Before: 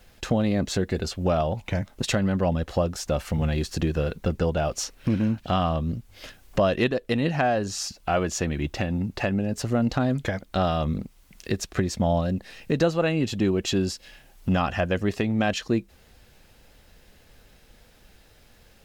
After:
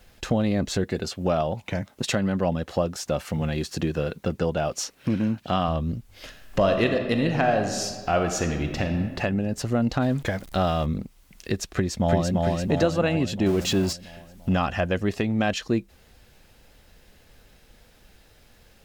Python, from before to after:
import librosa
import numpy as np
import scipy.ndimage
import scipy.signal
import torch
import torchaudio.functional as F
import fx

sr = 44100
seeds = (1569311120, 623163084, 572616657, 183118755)

y = fx.highpass(x, sr, hz=110.0, slope=12, at=(0.84, 5.68))
y = fx.reverb_throw(y, sr, start_s=6.25, length_s=2.72, rt60_s=1.6, drr_db=5.0)
y = fx.zero_step(y, sr, step_db=-40.0, at=(10.02, 10.86))
y = fx.echo_throw(y, sr, start_s=11.72, length_s=0.61, ms=340, feedback_pct=60, wet_db=-2.0)
y = fx.zero_step(y, sr, step_db=-31.0, at=(13.46, 13.93))